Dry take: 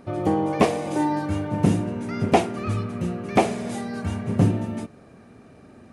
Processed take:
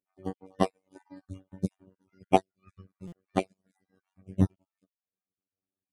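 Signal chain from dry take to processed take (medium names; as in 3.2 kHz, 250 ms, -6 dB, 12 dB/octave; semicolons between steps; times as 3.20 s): random holes in the spectrogram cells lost 35%; reverb removal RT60 1.2 s; robot voice 94.6 Hz; in parallel at -10 dB: saturation -21.5 dBFS, distortion -4 dB; on the sum: buffer glitch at 3.07 s, samples 256, times 8; upward expansion 2.5:1, over -44 dBFS; trim -1.5 dB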